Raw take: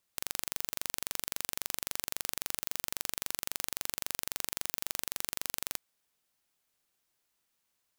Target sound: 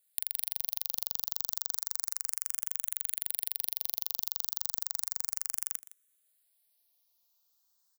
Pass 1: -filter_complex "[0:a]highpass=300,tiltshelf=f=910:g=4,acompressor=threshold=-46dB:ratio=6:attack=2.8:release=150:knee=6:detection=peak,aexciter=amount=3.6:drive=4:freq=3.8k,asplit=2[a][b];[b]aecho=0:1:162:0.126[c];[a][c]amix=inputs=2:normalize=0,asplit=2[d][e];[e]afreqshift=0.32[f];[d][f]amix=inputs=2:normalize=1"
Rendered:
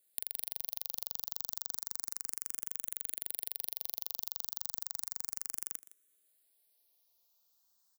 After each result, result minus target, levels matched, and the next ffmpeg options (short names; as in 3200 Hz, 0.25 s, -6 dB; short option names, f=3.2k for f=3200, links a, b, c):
250 Hz band +12.5 dB; compressor: peak gain reduction +4.5 dB
-filter_complex "[0:a]highpass=690,tiltshelf=f=910:g=4,acompressor=threshold=-46dB:ratio=6:attack=2.8:release=150:knee=6:detection=peak,aexciter=amount=3.6:drive=4:freq=3.8k,asplit=2[a][b];[b]aecho=0:1:162:0.126[c];[a][c]amix=inputs=2:normalize=0,asplit=2[d][e];[e]afreqshift=0.32[f];[d][f]amix=inputs=2:normalize=1"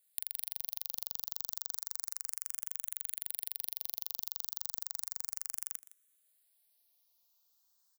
compressor: peak gain reduction +5.5 dB
-filter_complex "[0:a]highpass=690,tiltshelf=f=910:g=4,acompressor=threshold=-39dB:ratio=6:attack=2.8:release=150:knee=6:detection=peak,aexciter=amount=3.6:drive=4:freq=3.8k,asplit=2[a][b];[b]aecho=0:1:162:0.126[c];[a][c]amix=inputs=2:normalize=0,asplit=2[d][e];[e]afreqshift=0.32[f];[d][f]amix=inputs=2:normalize=1"